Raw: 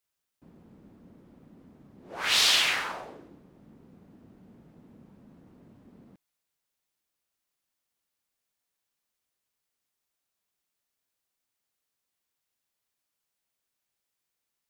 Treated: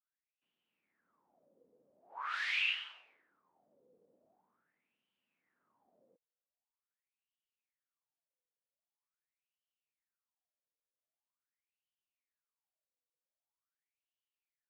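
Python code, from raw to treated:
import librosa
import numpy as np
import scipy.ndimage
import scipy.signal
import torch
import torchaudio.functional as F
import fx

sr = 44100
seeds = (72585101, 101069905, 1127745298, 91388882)

y = fx.wah_lfo(x, sr, hz=0.44, low_hz=480.0, high_hz=3000.0, q=10.0)
y = fx.dynamic_eq(y, sr, hz=1300.0, q=1.2, threshold_db=-55.0, ratio=4.0, max_db=3)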